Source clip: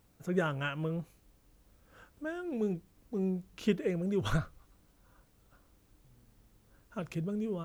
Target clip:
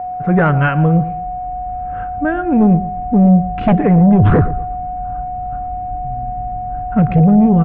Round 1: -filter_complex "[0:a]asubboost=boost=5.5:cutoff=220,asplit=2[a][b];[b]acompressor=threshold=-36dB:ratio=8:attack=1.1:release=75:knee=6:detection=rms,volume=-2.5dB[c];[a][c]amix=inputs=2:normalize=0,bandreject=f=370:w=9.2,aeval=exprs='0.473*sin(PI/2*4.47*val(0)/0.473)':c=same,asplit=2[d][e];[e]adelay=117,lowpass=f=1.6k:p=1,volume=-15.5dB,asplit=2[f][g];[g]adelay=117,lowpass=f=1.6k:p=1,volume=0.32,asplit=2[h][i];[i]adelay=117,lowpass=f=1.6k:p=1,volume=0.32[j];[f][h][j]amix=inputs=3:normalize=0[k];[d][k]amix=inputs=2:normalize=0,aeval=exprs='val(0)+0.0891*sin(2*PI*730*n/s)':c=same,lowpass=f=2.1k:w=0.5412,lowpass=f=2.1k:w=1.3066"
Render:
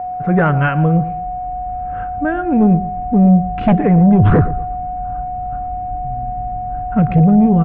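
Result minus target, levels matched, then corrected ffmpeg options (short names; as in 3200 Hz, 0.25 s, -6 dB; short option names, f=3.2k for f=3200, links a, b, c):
compressor: peak gain reduction +6 dB
-filter_complex "[0:a]asubboost=boost=5.5:cutoff=220,asplit=2[a][b];[b]acompressor=threshold=-29dB:ratio=8:attack=1.1:release=75:knee=6:detection=rms,volume=-2.5dB[c];[a][c]amix=inputs=2:normalize=0,bandreject=f=370:w=9.2,aeval=exprs='0.473*sin(PI/2*4.47*val(0)/0.473)':c=same,asplit=2[d][e];[e]adelay=117,lowpass=f=1.6k:p=1,volume=-15.5dB,asplit=2[f][g];[g]adelay=117,lowpass=f=1.6k:p=1,volume=0.32,asplit=2[h][i];[i]adelay=117,lowpass=f=1.6k:p=1,volume=0.32[j];[f][h][j]amix=inputs=3:normalize=0[k];[d][k]amix=inputs=2:normalize=0,aeval=exprs='val(0)+0.0891*sin(2*PI*730*n/s)':c=same,lowpass=f=2.1k:w=0.5412,lowpass=f=2.1k:w=1.3066"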